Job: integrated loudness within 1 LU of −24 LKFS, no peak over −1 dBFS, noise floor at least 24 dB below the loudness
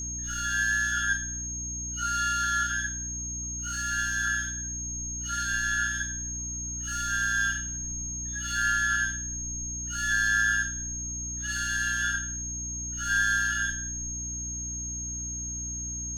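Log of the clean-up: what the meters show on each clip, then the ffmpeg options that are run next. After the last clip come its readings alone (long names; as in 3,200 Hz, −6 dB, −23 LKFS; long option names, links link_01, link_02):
mains hum 60 Hz; hum harmonics up to 300 Hz; level of the hum −37 dBFS; interfering tone 6,500 Hz; level of the tone −33 dBFS; integrated loudness −28.0 LKFS; sample peak −14.5 dBFS; target loudness −24.0 LKFS
→ -af "bandreject=frequency=60:width_type=h:width=6,bandreject=frequency=120:width_type=h:width=6,bandreject=frequency=180:width_type=h:width=6,bandreject=frequency=240:width_type=h:width=6,bandreject=frequency=300:width_type=h:width=6"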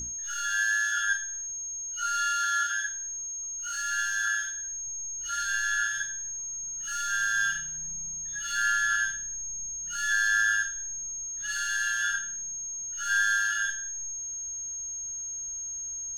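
mains hum none found; interfering tone 6,500 Hz; level of the tone −33 dBFS
→ -af "bandreject=frequency=6500:width=30"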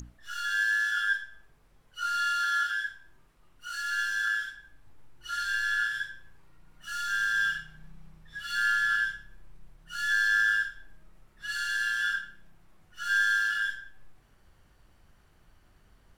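interfering tone none found; integrated loudness −28.0 LKFS; sample peak −16.0 dBFS; target loudness −24.0 LKFS
→ -af "volume=4dB"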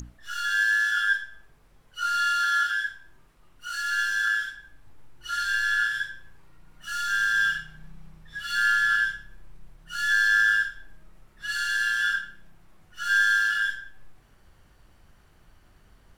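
integrated loudness −24.0 LKFS; sample peak −12.0 dBFS; background noise floor −58 dBFS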